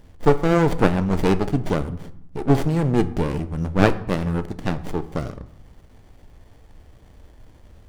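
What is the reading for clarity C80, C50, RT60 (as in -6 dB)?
18.5 dB, 16.0 dB, 0.75 s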